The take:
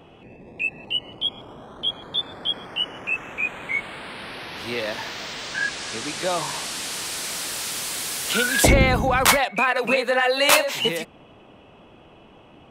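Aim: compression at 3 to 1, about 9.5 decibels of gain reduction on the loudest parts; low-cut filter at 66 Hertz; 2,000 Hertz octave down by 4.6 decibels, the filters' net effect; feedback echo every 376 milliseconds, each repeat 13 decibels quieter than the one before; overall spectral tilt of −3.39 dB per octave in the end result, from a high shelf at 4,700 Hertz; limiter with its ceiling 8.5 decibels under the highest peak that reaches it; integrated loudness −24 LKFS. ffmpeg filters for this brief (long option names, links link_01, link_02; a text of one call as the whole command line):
ffmpeg -i in.wav -af "highpass=66,equalizer=frequency=2000:width_type=o:gain=-5,highshelf=frequency=4700:gain=-5,acompressor=threshold=-26dB:ratio=3,alimiter=limit=-22dB:level=0:latency=1,aecho=1:1:376|752|1128:0.224|0.0493|0.0108,volume=7.5dB" out.wav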